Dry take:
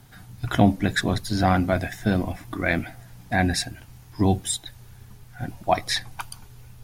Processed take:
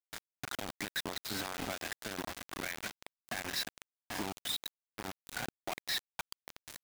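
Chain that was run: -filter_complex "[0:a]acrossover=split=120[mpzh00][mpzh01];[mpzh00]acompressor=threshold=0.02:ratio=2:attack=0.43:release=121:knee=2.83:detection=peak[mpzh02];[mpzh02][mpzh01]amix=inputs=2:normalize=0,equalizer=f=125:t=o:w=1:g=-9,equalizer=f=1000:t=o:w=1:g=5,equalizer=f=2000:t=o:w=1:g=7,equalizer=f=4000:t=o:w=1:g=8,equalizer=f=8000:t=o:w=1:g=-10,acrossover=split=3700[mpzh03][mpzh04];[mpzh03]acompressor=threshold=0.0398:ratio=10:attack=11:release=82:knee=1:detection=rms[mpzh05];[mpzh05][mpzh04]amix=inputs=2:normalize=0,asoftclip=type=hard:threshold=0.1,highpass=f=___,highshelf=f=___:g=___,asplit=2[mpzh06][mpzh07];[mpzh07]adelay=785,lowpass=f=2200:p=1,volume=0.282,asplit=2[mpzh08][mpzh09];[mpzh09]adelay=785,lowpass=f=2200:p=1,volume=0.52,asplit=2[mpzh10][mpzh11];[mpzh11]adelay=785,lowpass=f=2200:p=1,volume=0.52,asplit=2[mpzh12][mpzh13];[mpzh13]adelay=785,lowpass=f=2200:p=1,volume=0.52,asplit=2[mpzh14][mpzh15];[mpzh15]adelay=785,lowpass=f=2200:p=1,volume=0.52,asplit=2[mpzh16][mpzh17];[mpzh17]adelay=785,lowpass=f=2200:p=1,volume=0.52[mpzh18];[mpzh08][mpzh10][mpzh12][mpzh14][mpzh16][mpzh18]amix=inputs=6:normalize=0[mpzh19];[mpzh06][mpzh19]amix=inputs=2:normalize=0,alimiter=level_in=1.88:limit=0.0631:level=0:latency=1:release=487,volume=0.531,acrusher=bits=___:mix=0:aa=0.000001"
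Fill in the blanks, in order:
93, 4200, -5, 5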